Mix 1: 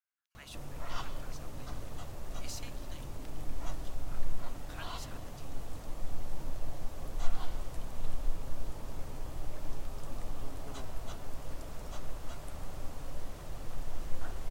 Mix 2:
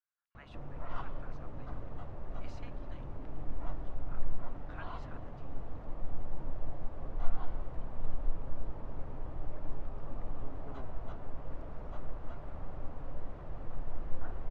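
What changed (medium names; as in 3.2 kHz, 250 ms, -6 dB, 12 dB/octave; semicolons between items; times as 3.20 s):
speech +3.0 dB; master: add low-pass 1.5 kHz 12 dB/octave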